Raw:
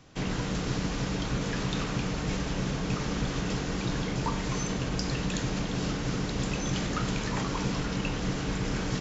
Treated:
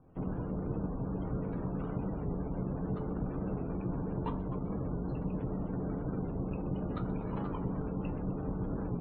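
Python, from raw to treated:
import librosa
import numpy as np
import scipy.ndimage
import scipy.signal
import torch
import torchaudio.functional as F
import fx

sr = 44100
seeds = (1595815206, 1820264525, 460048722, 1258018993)

p1 = scipy.signal.medfilt(x, 25)
p2 = fx.brickwall_lowpass(p1, sr, high_hz=4300.0)
p3 = p2 + 10.0 ** (-23.5 / 20.0) * np.pad(p2, (int(102 * sr / 1000.0), 0))[:len(p2)]
p4 = fx.spec_gate(p3, sr, threshold_db=-30, keep='strong')
p5 = fx.high_shelf(p4, sr, hz=2900.0, db=-7.5)
p6 = fx.comb_fb(p5, sr, f0_hz=87.0, decay_s=0.2, harmonics='all', damping=0.0, mix_pct=70)
p7 = p6 + fx.echo_feedback(p6, sr, ms=127, feedback_pct=56, wet_db=-19.5, dry=0)
p8 = fx.record_warp(p7, sr, rpm=45.0, depth_cents=100.0)
y = p8 * librosa.db_to_amplitude(1.5)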